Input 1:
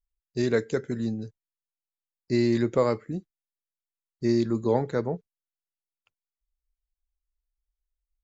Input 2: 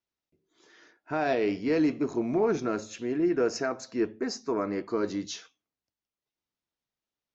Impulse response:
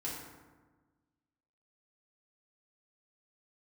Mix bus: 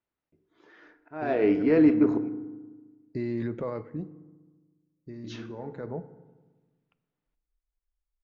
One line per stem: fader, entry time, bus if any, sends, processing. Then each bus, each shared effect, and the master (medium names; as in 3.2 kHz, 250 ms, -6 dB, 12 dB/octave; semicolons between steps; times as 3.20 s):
-1.0 dB, 0.85 s, send -16 dB, peak limiter -22 dBFS, peak gain reduction 10.5 dB; auto duck -11 dB, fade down 1.75 s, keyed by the second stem
+2.5 dB, 0.00 s, muted 2.29–5.24 s, send -10 dB, slow attack 378 ms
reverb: on, RT60 1.3 s, pre-delay 3 ms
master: low-pass 2.1 kHz 12 dB/octave